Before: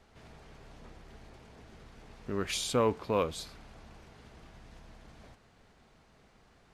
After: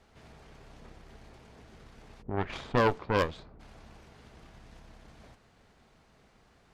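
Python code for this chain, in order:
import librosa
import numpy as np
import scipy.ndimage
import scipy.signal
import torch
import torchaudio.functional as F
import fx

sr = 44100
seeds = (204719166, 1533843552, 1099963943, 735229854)

y = fx.cheby_harmonics(x, sr, harmonics=(4,), levels_db=(-7,), full_scale_db=-16.0)
y = fx.env_lowpass(y, sr, base_hz=360.0, full_db=-21.0, at=(2.21, 3.59), fade=0.02)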